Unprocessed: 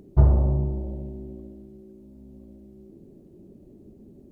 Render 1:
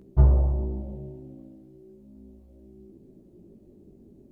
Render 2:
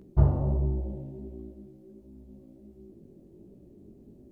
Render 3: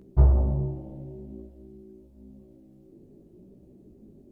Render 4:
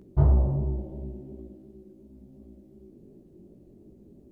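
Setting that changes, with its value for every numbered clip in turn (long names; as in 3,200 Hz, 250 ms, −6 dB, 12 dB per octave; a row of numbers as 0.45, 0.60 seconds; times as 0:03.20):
chorus effect, speed: 0.34, 1.4, 0.55, 2.8 Hertz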